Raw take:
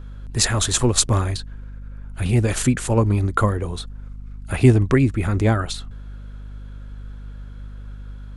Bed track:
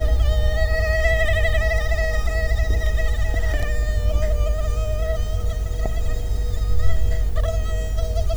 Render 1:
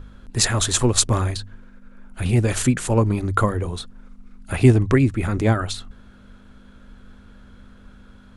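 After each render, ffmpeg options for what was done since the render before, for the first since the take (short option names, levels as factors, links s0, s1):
-af "bandreject=f=50:t=h:w=4,bandreject=f=100:t=h:w=4,bandreject=f=150:t=h:w=4"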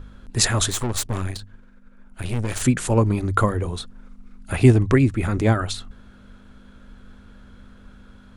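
-filter_complex "[0:a]asettb=1/sr,asplit=3[s0][s1][s2];[s0]atrim=end=0.704[s3];[s1]atrim=start=0.7:end=2.62,asetpts=PTS-STARTPTS,afade=t=in:d=0.004:c=qsin,afade=t=out:st=1.916:d=0.004:c=qsin,aeval=exprs='(tanh(11.2*val(0)+0.8)-tanh(0.8))/11.2':c=same[s4];[s2]atrim=start=2.616[s5];[s3][s4]acrossfade=d=0.004:c1=hsin:c2=qsin[s6];[s6][s5]acrossfade=d=0.004:c1=qsin:c2=hsin"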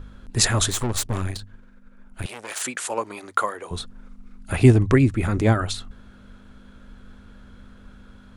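-filter_complex "[0:a]asettb=1/sr,asplit=3[s0][s1][s2];[s0]atrim=end=2.264[s3];[s1]atrim=start=2.26:end=3.71,asetpts=PTS-STARTPTS,afade=t=in:d=0.004:c=qsin,afade=t=out:st=1.446:d=0.004:c=qsin,highpass=660[s4];[s2]atrim=start=3.706[s5];[s3][s4]acrossfade=d=0.004:c1=hsin:c2=qsin[s6];[s6][s5]acrossfade=d=0.004:c1=qsin:c2=hsin"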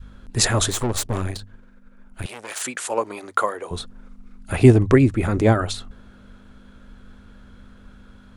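-af "adynamicequalizer=threshold=0.02:dfrequency=510:dqfactor=0.79:tfrequency=510:tqfactor=0.79:attack=5:release=100:ratio=0.375:range=2.5:mode=boostabove:tftype=bell"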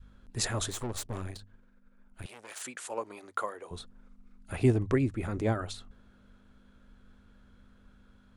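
-af "volume=0.237"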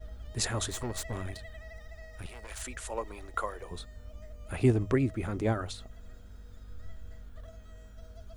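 -filter_complex "[1:a]volume=0.0473[s0];[0:a][s0]amix=inputs=2:normalize=0"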